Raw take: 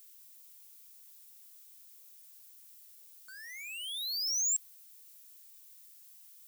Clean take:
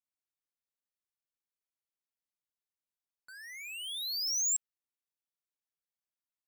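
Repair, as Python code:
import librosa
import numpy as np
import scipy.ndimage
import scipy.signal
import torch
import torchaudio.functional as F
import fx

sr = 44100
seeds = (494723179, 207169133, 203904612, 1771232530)

y = fx.noise_reduce(x, sr, print_start_s=5.74, print_end_s=6.24, reduce_db=30.0)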